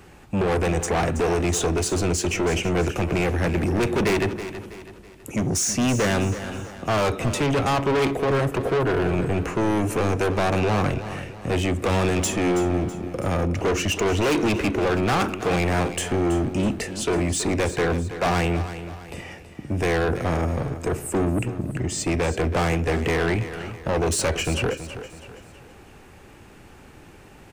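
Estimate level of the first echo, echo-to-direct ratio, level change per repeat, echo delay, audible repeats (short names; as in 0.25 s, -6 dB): -12.0 dB, -11.0 dB, -7.5 dB, 0.326 s, 4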